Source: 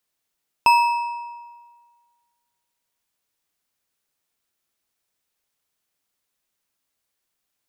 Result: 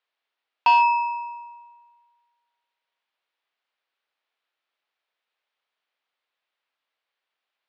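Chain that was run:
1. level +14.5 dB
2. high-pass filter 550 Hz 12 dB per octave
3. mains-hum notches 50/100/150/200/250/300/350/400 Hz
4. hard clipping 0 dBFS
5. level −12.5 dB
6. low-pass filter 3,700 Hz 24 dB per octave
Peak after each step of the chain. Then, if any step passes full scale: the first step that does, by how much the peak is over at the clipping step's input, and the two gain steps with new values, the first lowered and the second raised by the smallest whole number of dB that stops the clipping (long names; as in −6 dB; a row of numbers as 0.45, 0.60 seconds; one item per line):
+9.0, +9.0, +9.0, 0.0, −12.5, −11.0 dBFS
step 1, 9.0 dB
step 1 +5.5 dB, step 5 −3.5 dB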